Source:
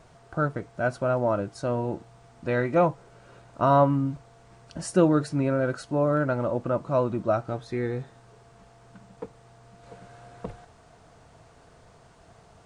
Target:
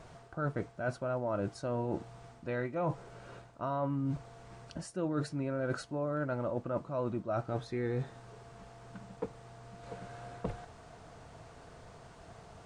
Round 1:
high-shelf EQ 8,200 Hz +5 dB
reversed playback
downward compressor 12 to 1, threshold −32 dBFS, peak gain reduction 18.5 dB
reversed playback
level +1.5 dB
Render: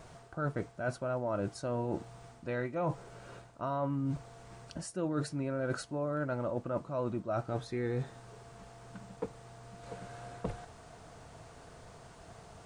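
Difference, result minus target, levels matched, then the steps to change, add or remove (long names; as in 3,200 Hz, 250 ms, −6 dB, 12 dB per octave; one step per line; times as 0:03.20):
8,000 Hz band +4.0 dB
change: high-shelf EQ 8,200 Hz −4.5 dB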